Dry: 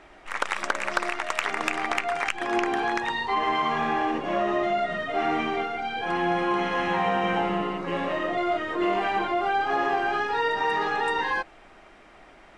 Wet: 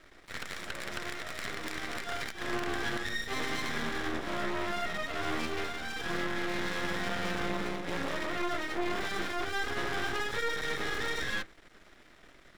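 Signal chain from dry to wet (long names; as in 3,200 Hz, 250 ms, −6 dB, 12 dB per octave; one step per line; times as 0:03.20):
lower of the sound and its delayed copy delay 0.54 ms
brickwall limiter −20.5 dBFS, peak gain reduction 8 dB
half-wave rectification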